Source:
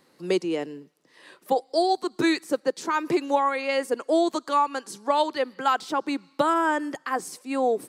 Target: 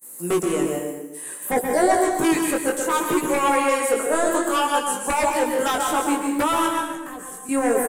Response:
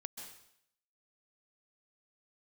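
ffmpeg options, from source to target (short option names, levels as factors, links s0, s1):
-filter_complex "[0:a]aexciter=amount=9.7:drive=4.9:freq=6900,acrossover=split=3500[s0][s1];[s1]acompressor=threshold=0.00447:ratio=4:attack=1:release=60[s2];[s0][s2]amix=inputs=2:normalize=0,aeval=exprs='0.224*sin(PI/2*2*val(0)/0.224)':c=same,asettb=1/sr,asplit=3[s3][s4][s5];[s3]atrim=end=1.534[s6];[s4]atrim=start=1.53:end=1.98,asetpts=PTS-STARTPTS,afade=t=in:d=0.004:c=qsin,afade=t=out:st=0.446:d=0.004:c=qsin,equalizer=f=72:w=0.34:g=14.5[s7];[s5]atrim=start=1.976[s8];[s6][s7]acrossfade=d=0.004:c1=hsin:c2=qsin[s9];[s9][s8]acrossfade=d=0.004:c1=qsin:c2=hsin,asettb=1/sr,asplit=3[s10][s11][s12];[s10]atrim=end=6.664[s13];[s11]atrim=start=6.66:end=7.49,asetpts=PTS-STARTPTS,afade=t=in:d=0.004:c=qsin,afade=t=out:st=0.826:d=0.004:c=qsin,acrossover=split=140[s14][s15];[s15]acompressor=threshold=0.00708:ratio=2[s16];[s14][s16]amix=inputs=2:normalize=0[s17];[s12]atrim=start=7.486[s18];[s13][s17]acrossfade=d=0.004:c1=hsin:c2=qsin[s19];[s19][s18]acrossfade=d=0.004:c1=qsin:c2=hsin,agate=range=0.0501:threshold=0.00562:ratio=16:detection=peak,highshelf=f=6200:t=q:w=1.5:g=10,asplit=2[s20][s21];[s21]adelay=124,lowpass=f=2000:p=1,volume=0.562,asplit=2[s22][s23];[s23]adelay=124,lowpass=f=2000:p=1,volume=0.35,asplit=2[s24][s25];[s25]adelay=124,lowpass=f=2000:p=1,volume=0.35,asplit=2[s26][s27];[s27]adelay=124,lowpass=f=2000:p=1,volume=0.35[s28];[s20][s22][s24][s26][s28]amix=inputs=5:normalize=0[s29];[1:a]atrim=start_sample=2205[s30];[s29][s30]afir=irnorm=-1:irlink=0,flanger=delay=16:depth=6.2:speed=0.6,volume=1.41"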